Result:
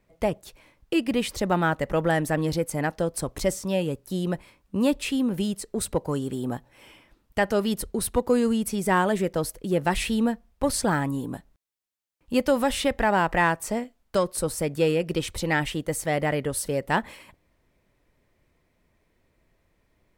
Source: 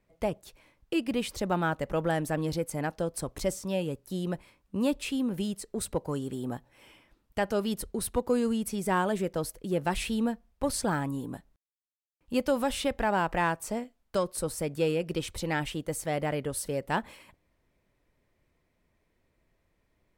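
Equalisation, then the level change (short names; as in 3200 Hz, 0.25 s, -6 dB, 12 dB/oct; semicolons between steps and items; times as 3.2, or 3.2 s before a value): dynamic EQ 1900 Hz, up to +6 dB, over -56 dBFS, Q 7.6; +5.0 dB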